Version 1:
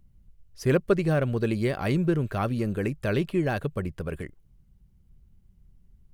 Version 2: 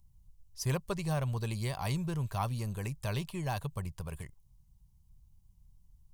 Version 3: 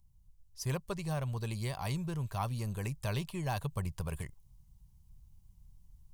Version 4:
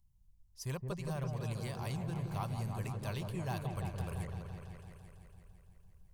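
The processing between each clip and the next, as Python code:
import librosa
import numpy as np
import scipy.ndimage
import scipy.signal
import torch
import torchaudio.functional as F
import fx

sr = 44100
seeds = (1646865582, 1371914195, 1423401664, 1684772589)

y1 = fx.curve_eq(x, sr, hz=(130.0, 300.0, 550.0, 980.0, 1400.0, 2500.0, 3600.0, 6200.0), db=(0, -15, -9, 6, -9, -3, 2, 8))
y1 = F.gain(torch.from_numpy(y1), -4.0).numpy()
y2 = fx.rider(y1, sr, range_db=4, speed_s=0.5)
y2 = F.gain(torch.from_numpy(y2), -1.0).numpy()
y3 = fx.echo_opening(y2, sr, ms=168, hz=750, octaves=1, feedback_pct=70, wet_db=-3)
y3 = F.gain(torch.from_numpy(y3), -5.0).numpy()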